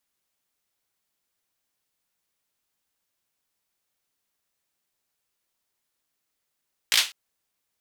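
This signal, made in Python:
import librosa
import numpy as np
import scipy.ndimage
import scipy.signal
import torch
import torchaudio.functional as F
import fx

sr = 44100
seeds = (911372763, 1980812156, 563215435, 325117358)

y = fx.drum_clap(sr, seeds[0], length_s=0.2, bursts=4, spacing_ms=18, hz=3200.0, decay_s=0.26)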